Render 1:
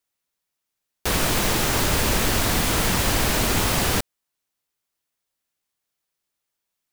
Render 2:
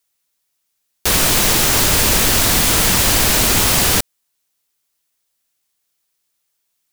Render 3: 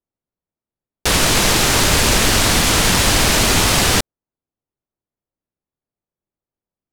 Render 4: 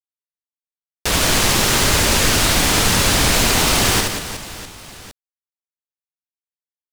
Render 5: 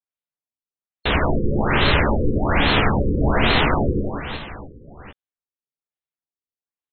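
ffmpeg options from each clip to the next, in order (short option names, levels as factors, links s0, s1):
-af "highshelf=f=2900:g=8,volume=1.5"
-af "adynamicsmooth=sensitivity=7.5:basefreq=570,volume=1.26"
-filter_complex "[0:a]aeval=exprs='val(0)*gte(abs(val(0)),0.119)':c=same,asplit=2[s0][s1];[s1]aecho=0:1:70|182|361.2|647.9|1107:0.631|0.398|0.251|0.158|0.1[s2];[s0][s2]amix=inputs=2:normalize=0,volume=0.708"
-filter_complex "[0:a]asplit=2[s0][s1];[s1]adelay=14,volume=0.447[s2];[s0][s2]amix=inputs=2:normalize=0,afftfilt=real='re*lt(b*sr/1024,510*pow(4300/510,0.5+0.5*sin(2*PI*1.2*pts/sr)))':imag='im*lt(b*sr/1024,510*pow(4300/510,0.5+0.5*sin(2*PI*1.2*pts/sr)))':win_size=1024:overlap=0.75"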